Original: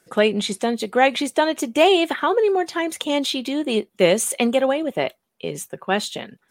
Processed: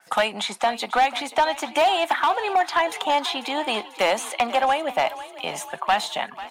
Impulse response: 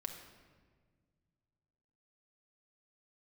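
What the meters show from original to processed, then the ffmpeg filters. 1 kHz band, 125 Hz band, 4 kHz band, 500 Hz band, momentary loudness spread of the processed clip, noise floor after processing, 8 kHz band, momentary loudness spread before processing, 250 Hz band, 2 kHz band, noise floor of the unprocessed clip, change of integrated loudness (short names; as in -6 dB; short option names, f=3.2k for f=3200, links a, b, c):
+4.0 dB, under -10 dB, -1.5 dB, -6.0 dB, 8 LU, -44 dBFS, -6.0 dB, 12 LU, -12.0 dB, 0.0 dB, -68 dBFS, -2.5 dB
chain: -filter_complex "[0:a]highpass=180,lowshelf=f=590:t=q:w=3:g=-10.5,acrossover=split=290|1900|4800[a][b][c][d];[a]acompressor=threshold=-48dB:ratio=4[e];[b]acompressor=threshold=-25dB:ratio=4[f];[c]acompressor=threshold=-38dB:ratio=4[g];[d]acompressor=threshold=-43dB:ratio=4[h];[e][f][g][h]amix=inputs=4:normalize=0,asoftclip=type=hard:threshold=-21dB,asplit=2[i][j];[j]asplit=6[k][l][m][n][o][p];[k]adelay=493,afreqshift=32,volume=-15.5dB[q];[l]adelay=986,afreqshift=64,volume=-19.9dB[r];[m]adelay=1479,afreqshift=96,volume=-24.4dB[s];[n]adelay=1972,afreqshift=128,volume=-28.8dB[t];[o]adelay=2465,afreqshift=160,volume=-33.2dB[u];[p]adelay=2958,afreqshift=192,volume=-37.7dB[v];[q][r][s][t][u][v]amix=inputs=6:normalize=0[w];[i][w]amix=inputs=2:normalize=0,adynamicequalizer=threshold=0.00398:dfrequency=4900:dqfactor=0.7:tfrequency=4900:tqfactor=0.7:attack=5:release=100:ratio=0.375:range=3:mode=cutabove:tftype=highshelf,volume=7.5dB"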